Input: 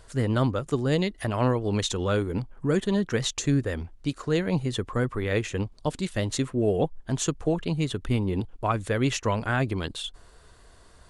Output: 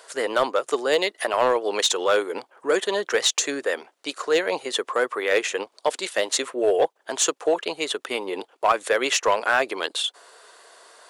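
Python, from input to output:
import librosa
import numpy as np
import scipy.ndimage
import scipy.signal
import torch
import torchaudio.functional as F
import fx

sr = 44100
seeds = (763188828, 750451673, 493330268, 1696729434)

p1 = scipy.signal.sosfilt(scipy.signal.butter(4, 450.0, 'highpass', fs=sr, output='sos'), x)
p2 = 10.0 ** (-22.5 / 20.0) * (np.abs((p1 / 10.0 ** (-22.5 / 20.0) + 3.0) % 4.0 - 2.0) - 1.0)
p3 = p1 + F.gain(torch.from_numpy(p2), -8.0).numpy()
y = F.gain(torch.from_numpy(p3), 6.0).numpy()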